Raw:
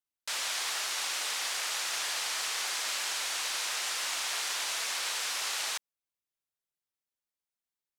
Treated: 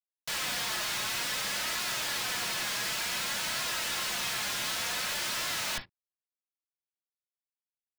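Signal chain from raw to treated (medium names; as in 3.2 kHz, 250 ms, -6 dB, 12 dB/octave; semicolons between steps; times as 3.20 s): high-pass 460 Hz 24 dB/octave; in parallel at -2.5 dB: peak limiter -31.5 dBFS, peak gain reduction 10 dB; on the sum: flange 0.55 Hz, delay 2.8 ms, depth 2.2 ms, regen +9%; Schmitt trigger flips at -45 dBFS; companded quantiser 4-bit; on a send at -3 dB: brick-wall FIR low-pass 5.5 kHz + reverberation, pre-delay 3 ms; on the sum: trim +4.5 dB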